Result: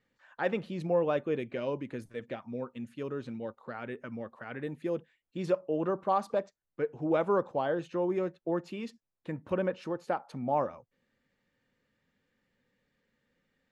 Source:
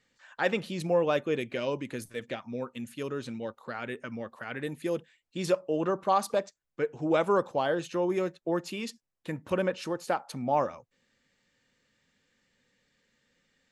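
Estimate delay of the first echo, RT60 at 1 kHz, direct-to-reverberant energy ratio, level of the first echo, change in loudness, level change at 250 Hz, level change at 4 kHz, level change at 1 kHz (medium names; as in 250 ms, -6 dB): no echo, no reverb, no reverb, no echo, -2.5 dB, -1.5 dB, -10.0 dB, -3.0 dB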